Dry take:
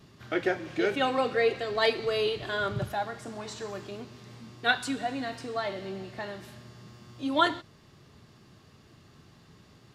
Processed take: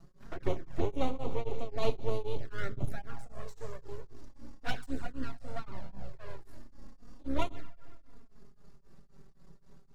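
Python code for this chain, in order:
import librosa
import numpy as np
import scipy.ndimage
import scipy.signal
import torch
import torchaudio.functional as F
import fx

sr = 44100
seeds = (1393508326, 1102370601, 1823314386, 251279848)

y = fx.octave_divider(x, sr, octaves=2, level_db=-4.0)
y = fx.peak_eq(y, sr, hz=3000.0, db=-13.0, octaves=1.3)
y = np.maximum(y, 0.0)
y = fx.low_shelf(y, sr, hz=140.0, db=6.0)
y = y + 10.0 ** (-21.5 / 20.0) * np.pad(y, (int(125 * sr / 1000.0), 0))[:len(y)]
y = fx.rev_schroeder(y, sr, rt60_s=2.0, comb_ms=38, drr_db=18.5)
y = fx.env_flanger(y, sr, rest_ms=6.2, full_db=-22.0)
y = y + 0.32 * np.pad(y, (int(7.3 * sr / 1000.0), 0))[:len(y)]
y = y * np.abs(np.cos(np.pi * 3.8 * np.arange(len(y)) / sr))
y = y * librosa.db_to_amplitude(1.0)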